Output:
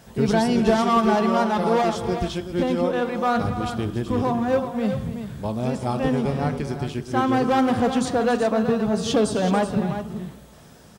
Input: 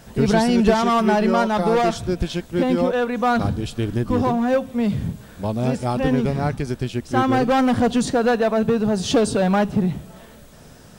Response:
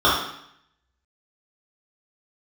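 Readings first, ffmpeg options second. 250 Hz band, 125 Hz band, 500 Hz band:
−2.5 dB, −3.0 dB, −2.0 dB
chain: -filter_complex "[0:a]highpass=46,aecho=1:1:280|376:0.211|0.335,asplit=2[link_01][link_02];[1:a]atrim=start_sample=2205,asetrate=41454,aresample=44100[link_03];[link_02][link_03]afir=irnorm=-1:irlink=0,volume=-34dB[link_04];[link_01][link_04]amix=inputs=2:normalize=0,volume=-3.5dB"

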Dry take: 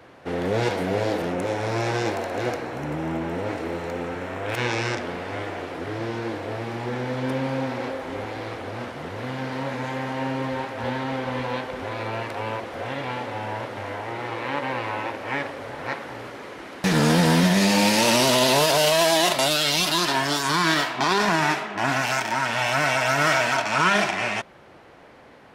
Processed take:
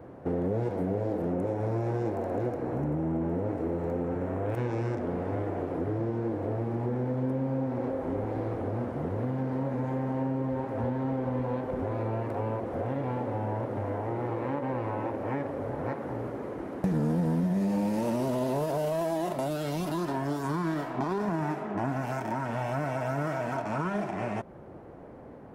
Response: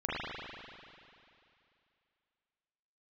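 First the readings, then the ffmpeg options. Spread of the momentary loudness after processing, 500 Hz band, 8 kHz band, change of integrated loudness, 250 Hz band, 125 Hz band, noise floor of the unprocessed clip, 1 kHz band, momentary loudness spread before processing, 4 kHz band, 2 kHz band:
4 LU, −5.0 dB, below −20 dB, −7.5 dB, −3.0 dB, −1.5 dB, −48 dBFS, −9.5 dB, 14 LU, −26.5 dB, −18.0 dB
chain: -af "tiltshelf=frequency=920:gain=7,acompressor=threshold=-27dB:ratio=4,equalizer=frequency=3800:width_type=o:width=2.2:gain=-13"

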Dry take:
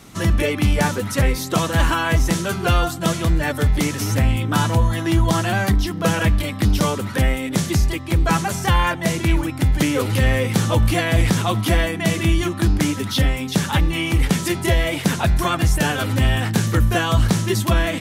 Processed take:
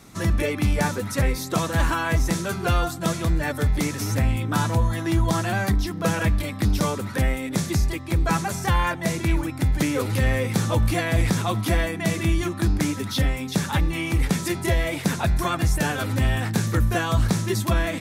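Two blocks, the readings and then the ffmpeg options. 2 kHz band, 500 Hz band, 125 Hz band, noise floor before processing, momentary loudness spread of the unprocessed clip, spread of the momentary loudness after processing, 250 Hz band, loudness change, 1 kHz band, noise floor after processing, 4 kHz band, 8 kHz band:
−4.5 dB, −4.0 dB, −4.0 dB, −29 dBFS, 3 LU, 3 LU, −4.0 dB, −4.0 dB, −4.0 dB, −33 dBFS, −6.5 dB, −4.0 dB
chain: -af "equalizer=frequency=3000:width=7.5:gain=-7.5,volume=-4dB"

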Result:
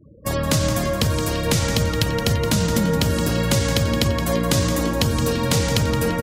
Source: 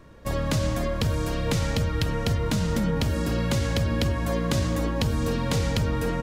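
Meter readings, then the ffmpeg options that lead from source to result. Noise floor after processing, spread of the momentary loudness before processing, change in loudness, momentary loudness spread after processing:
−25 dBFS, 2 LU, +5.5 dB, 2 LU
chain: -filter_complex "[0:a]highpass=69,highshelf=frequency=5400:gain=9.5,afftfilt=real='re*gte(hypot(re,im),0.01)':imag='im*gte(hypot(re,im),0.01)':win_size=1024:overlap=0.75,asplit=2[link_01][link_02];[link_02]aecho=0:1:170|340|510|680|850:0.316|0.139|0.0612|0.0269|0.0119[link_03];[link_01][link_03]amix=inputs=2:normalize=0,volume=5dB"

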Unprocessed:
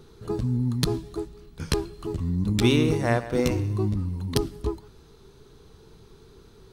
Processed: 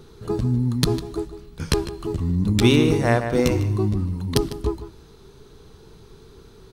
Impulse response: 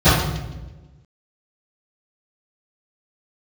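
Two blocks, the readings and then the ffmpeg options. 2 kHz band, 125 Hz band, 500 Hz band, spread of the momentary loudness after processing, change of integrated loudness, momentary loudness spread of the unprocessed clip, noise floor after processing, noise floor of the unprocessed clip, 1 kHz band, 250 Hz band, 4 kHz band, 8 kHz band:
+4.0 dB, +4.0 dB, +4.5 dB, 14 LU, +4.0 dB, 13 LU, −48 dBFS, −52 dBFS, +4.5 dB, +4.0 dB, +4.0 dB, +4.0 dB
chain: -filter_complex "[0:a]asplit=2[link_01][link_02];[link_02]adelay=151.6,volume=-13dB,highshelf=frequency=4000:gain=-3.41[link_03];[link_01][link_03]amix=inputs=2:normalize=0,volume=4dB"

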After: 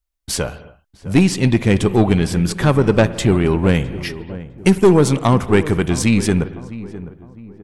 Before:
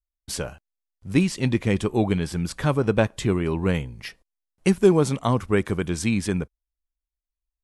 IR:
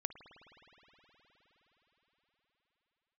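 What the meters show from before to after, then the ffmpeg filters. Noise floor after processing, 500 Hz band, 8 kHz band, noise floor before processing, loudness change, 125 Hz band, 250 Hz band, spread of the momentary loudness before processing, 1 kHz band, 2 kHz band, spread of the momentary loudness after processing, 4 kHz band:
−60 dBFS, +6.5 dB, +8.5 dB, below −85 dBFS, +7.0 dB, +8.0 dB, +7.5 dB, 13 LU, +7.5 dB, +7.0 dB, 17 LU, +8.0 dB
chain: -filter_complex "[0:a]aeval=exprs='(tanh(5.01*val(0)+0.3)-tanh(0.3))/5.01':channel_layout=same,asplit=2[link_01][link_02];[link_02]adelay=657,lowpass=frequency=1200:poles=1,volume=-15dB,asplit=2[link_03][link_04];[link_04]adelay=657,lowpass=frequency=1200:poles=1,volume=0.42,asplit=2[link_05][link_06];[link_06]adelay=657,lowpass=frequency=1200:poles=1,volume=0.42,asplit=2[link_07][link_08];[link_08]adelay=657,lowpass=frequency=1200:poles=1,volume=0.42[link_09];[link_01][link_03][link_05][link_07][link_09]amix=inputs=5:normalize=0,asplit=2[link_10][link_11];[1:a]atrim=start_sample=2205,afade=type=out:start_time=0.32:duration=0.01,atrim=end_sample=14553[link_12];[link_11][link_12]afir=irnorm=-1:irlink=0,volume=4dB[link_13];[link_10][link_13]amix=inputs=2:normalize=0,volume=2dB"

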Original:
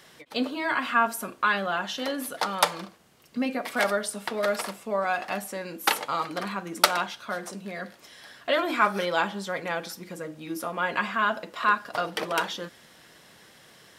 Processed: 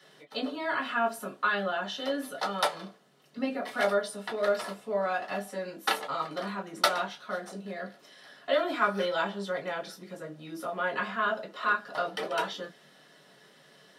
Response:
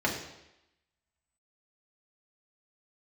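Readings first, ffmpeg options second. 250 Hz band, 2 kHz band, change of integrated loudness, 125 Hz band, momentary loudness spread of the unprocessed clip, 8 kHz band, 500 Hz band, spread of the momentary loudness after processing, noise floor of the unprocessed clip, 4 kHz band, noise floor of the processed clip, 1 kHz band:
−4.0 dB, −4.0 dB, −3.5 dB, −3.5 dB, 14 LU, −9.0 dB, −0.5 dB, 13 LU, −54 dBFS, −4.0 dB, −59 dBFS, −4.5 dB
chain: -filter_complex "[1:a]atrim=start_sample=2205,atrim=end_sample=3528,asetrate=88200,aresample=44100[link_01];[0:a][link_01]afir=irnorm=-1:irlink=0,volume=-9dB"

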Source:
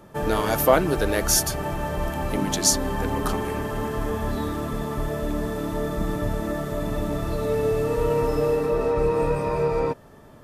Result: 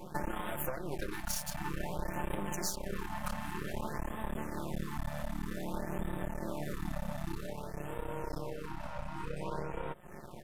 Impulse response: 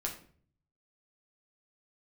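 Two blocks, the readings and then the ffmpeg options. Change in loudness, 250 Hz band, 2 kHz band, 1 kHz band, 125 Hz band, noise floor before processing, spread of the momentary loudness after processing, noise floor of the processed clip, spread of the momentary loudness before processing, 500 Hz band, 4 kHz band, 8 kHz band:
−15.5 dB, −13.0 dB, −11.5 dB, −13.0 dB, −13.0 dB, −48 dBFS, 5 LU, −46 dBFS, 8 LU, −19.0 dB, −16.0 dB, −17.5 dB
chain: -af "acompressor=threshold=-34dB:ratio=16,aecho=1:1:5.6:0.99,aeval=exprs='max(val(0),0)':channel_layout=same,afftfilt=real='re*(1-between(b*sr/1024,360*pow(5500/360,0.5+0.5*sin(2*PI*0.53*pts/sr))/1.41,360*pow(5500/360,0.5+0.5*sin(2*PI*0.53*pts/sr))*1.41))':imag='im*(1-between(b*sr/1024,360*pow(5500/360,0.5+0.5*sin(2*PI*0.53*pts/sr))/1.41,360*pow(5500/360,0.5+0.5*sin(2*PI*0.53*pts/sr))*1.41))':win_size=1024:overlap=0.75,volume=2dB"

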